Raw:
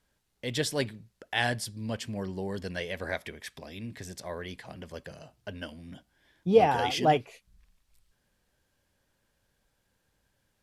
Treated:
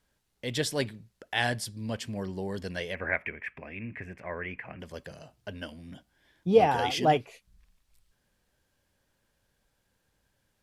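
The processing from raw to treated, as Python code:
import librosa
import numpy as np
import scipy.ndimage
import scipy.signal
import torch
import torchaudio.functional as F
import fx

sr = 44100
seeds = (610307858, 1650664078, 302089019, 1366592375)

y = fx.curve_eq(x, sr, hz=(830.0, 2500.0, 3700.0), db=(0, 10, -24), at=(2.94, 4.79), fade=0.02)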